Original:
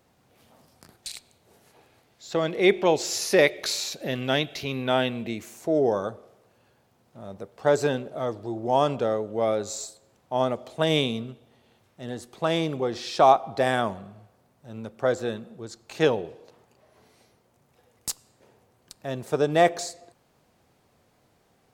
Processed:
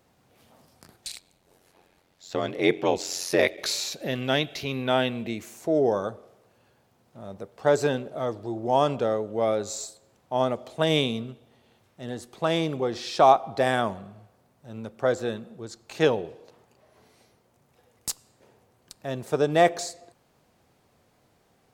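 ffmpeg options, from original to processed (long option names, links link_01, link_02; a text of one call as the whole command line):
ffmpeg -i in.wav -filter_complex "[0:a]asplit=3[link_01][link_02][link_03];[link_01]afade=type=out:start_time=1.15:duration=0.02[link_04];[link_02]aeval=exprs='val(0)*sin(2*PI*45*n/s)':channel_layout=same,afade=type=in:start_time=1.15:duration=0.02,afade=type=out:start_time=3.56:duration=0.02[link_05];[link_03]afade=type=in:start_time=3.56:duration=0.02[link_06];[link_04][link_05][link_06]amix=inputs=3:normalize=0" out.wav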